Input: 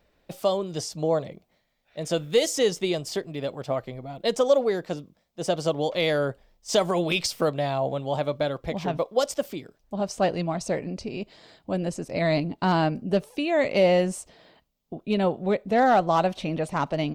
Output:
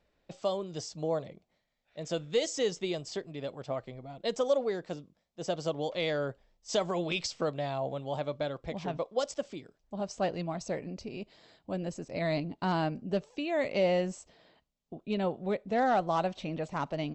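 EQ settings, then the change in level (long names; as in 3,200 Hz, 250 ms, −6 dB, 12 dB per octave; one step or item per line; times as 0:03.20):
linear-phase brick-wall low-pass 8,100 Hz
−7.5 dB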